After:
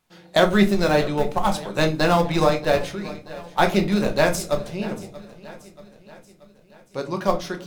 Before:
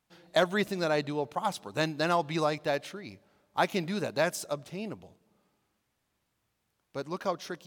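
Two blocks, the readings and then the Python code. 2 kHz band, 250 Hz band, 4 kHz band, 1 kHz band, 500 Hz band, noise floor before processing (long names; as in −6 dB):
+8.0 dB, +12.0 dB, +8.0 dB, +8.5 dB, +9.5 dB, −79 dBFS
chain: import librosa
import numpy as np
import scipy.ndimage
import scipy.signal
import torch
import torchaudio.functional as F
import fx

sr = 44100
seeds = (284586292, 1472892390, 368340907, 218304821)

p1 = fx.schmitt(x, sr, flips_db=-27.0)
p2 = x + (p1 * 10.0 ** (-5.5 / 20.0))
p3 = fx.echo_feedback(p2, sr, ms=632, feedback_pct=55, wet_db=-18.0)
p4 = fx.room_shoebox(p3, sr, seeds[0], volume_m3=140.0, walls='furnished', distance_m=1.0)
y = p4 * 10.0 ** (6.0 / 20.0)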